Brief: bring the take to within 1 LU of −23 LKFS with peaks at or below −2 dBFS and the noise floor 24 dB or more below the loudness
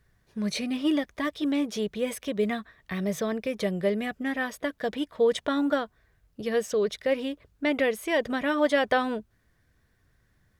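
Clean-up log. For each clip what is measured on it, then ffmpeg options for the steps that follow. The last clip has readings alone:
integrated loudness −28.0 LKFS; sample peak −11.5 dBFS; target loudness −23.0 LKFS
→ -af "volume=5dB"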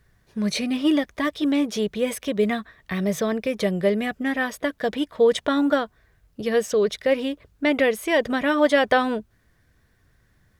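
integrated loudness −23.0 LKFS; sample peak −6.5 dBFS; background noise floor −63 dBFS

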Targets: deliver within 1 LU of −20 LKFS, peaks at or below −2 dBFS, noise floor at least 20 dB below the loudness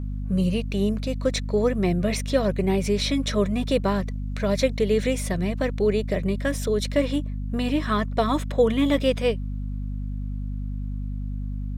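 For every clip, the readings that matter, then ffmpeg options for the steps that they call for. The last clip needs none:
mains hum 50 Hz; hum harmonics up to 250 Hz; level of the hum −27 dBFS; integrated loudness −25.0 LKFS; sample peak −8.0 dBFS; target loudness −20.0 LKFS
→ -af "bandreject=frequency=50:width_type=h:width=6,bandreject=frequency=100:width_type=h:width=6,bandreject=frequency=150:width_type=h:width=6,bandreject=frequency=200:width_type=h:width=6,bandreject=frequency=250:width_type=h:width=6"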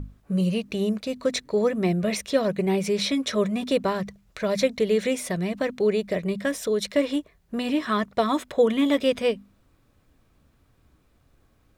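mains hum none found; integrated loudness −25.0 LKFS; sample peak −9.0 dBFS; target loudness −20.0 LKFS
→ -af "volume=5dB"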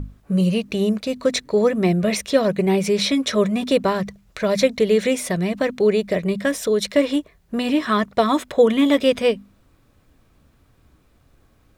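integrated loudness −20.0 LKFS; sample peak −4.0 dBFS; background noise floor −59 dBFS

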